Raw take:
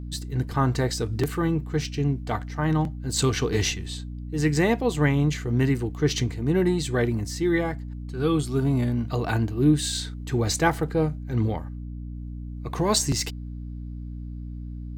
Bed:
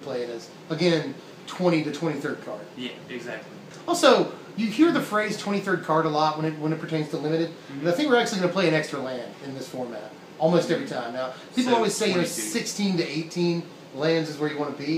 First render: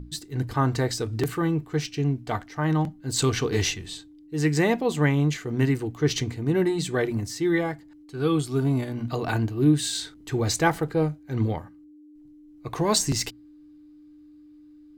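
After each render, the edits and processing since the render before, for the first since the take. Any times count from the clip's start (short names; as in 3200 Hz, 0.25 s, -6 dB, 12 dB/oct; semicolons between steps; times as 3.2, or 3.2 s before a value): notches 60/120/180/240 Hz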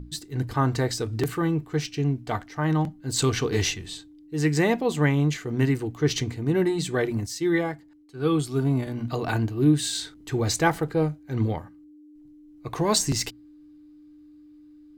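7.26–8.87 three-band expander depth 40%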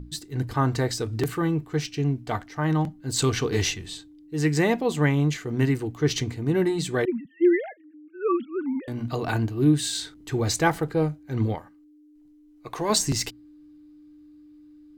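7.05–8.88 sine-wave speech; 11.55–12.9 bell 91 Hz -11.5 dB 2.8 oct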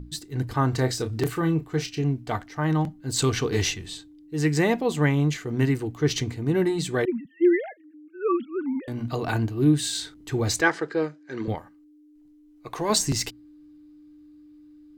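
0.7–2.04 doubler 31 ms -10 dB; 10.61–11.48 speaker cabinet 320–7400 Hz, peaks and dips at 360 Hz +4 dB, 760 Hz -7 dB, 1700 Hz +8 dB, 5100 Hz +5 dB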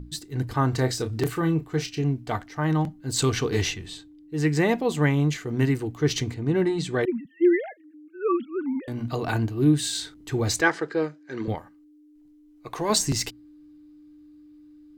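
3.61–4.69 tone controls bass 0 dB, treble -4 dB; 6.34–7.03 air absorption 53 m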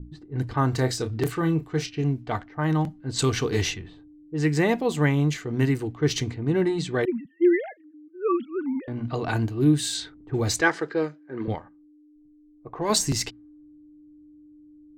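low-pass opened by the level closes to 390 Hz, open at -21.5 dBFS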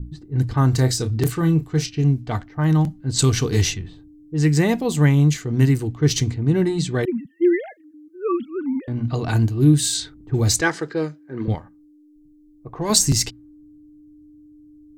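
tone controls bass +9 dB, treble +9 dB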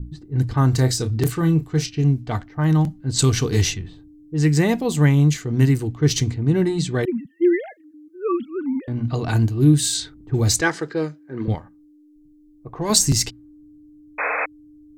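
14.18–14.46 painted sound noise 420–2600 Hz -23 dBFS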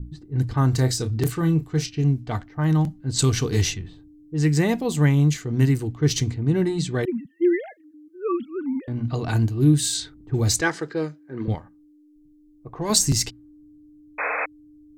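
gain -2.5 dB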